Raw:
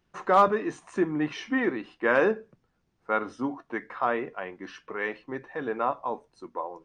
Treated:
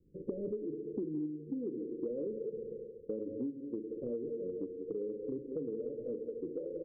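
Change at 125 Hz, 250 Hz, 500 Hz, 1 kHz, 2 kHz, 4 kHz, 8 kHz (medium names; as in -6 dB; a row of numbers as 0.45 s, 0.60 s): -7.5 dB, -7.0 dB, -8.5 dB, under -40 dB, under -40 dB, under -40 dB, no reading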